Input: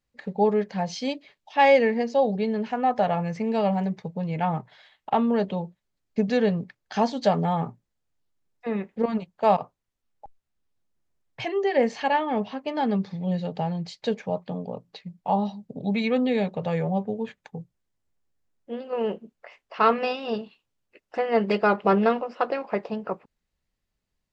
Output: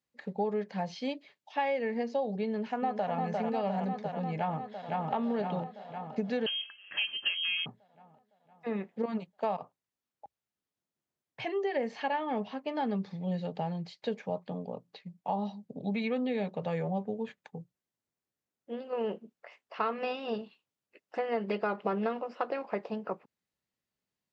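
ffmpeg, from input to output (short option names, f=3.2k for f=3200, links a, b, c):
-filter_complex "[0:a]asplit=2[a][b];[b]afade=t=in:st=2.47:d=0.01,afade=t=out:st=3.14:d=0.01,aecho=0:1:350|700|1050|1400|1750|2100|2450|2800|3150|3500|3850|4200:0.562341|0.421756|0.316317|0.237238|0.177928|0.133446|0.100085|0.0750635|0.0562976|0.0422232|0.0316674|0.0237506[c];[a][c]amix=inputs=2:normalize=0,asplit=2[d][e];[e]afade=t=in:st=4.37:d=0.01,afade=t=out:st=5.12:d=0.01,aecho=0:1:510|1020|1530|2040|2550|3060|3570|4080|4590:0.794328|0.476597|0.285958|0.171575|0.102945|0.061767|0.0370602|0.0222361|0.0133417[f];[d][f]amix=inputs=2:normalize=0,asettb=1/sr,asplit=3[g][h][i];[g]atrim=end=6.464[j];[h]atrim=start=6.46:end=7.66,asetpts=PTS-STARTPTS,afade=t=in:d=0.004:c=qsin,afade=t=out:st=1.196:d=0.004:c=qsin,lowpass=f=2.9k:t=q:w=0.5098,lowpass=f=2.9k:t=q:w=0.6013,lowpass=f=2.9k:t=q:w=0.9,lowpass=f=2.9k:t=q:w=2.563,afreqshift=-3400[k];[i]atrim=start=7.656[l];[j][k]acrossfade=d=0.004:c1=hsin:c2=qsin[m];[m][l]acrossfade=d=0.004:c1=qsin:c2=hsin,acrossover=split=4300[n][o];[o]acompressor=threshold=-56dB:ratio=4:attack=1:release=60[p];[n][p]amix=inputs=2:normalize=0,highpass=140,acompressor=threshold=-22dB:ratio=10,volume=-5dB"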